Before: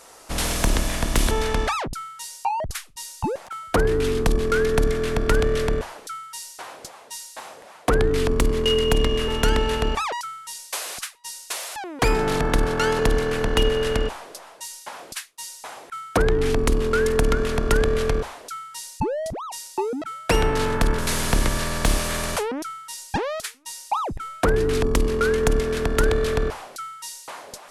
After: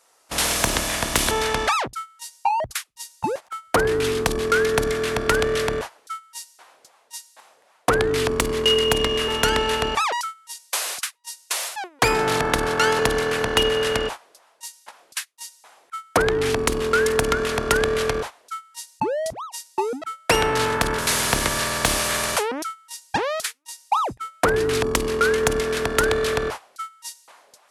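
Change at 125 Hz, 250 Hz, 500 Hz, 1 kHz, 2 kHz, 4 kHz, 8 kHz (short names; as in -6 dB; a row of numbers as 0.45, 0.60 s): -5.0, -2.5, +0.5, +3.5, +4.5, +4.5, +4.0 dB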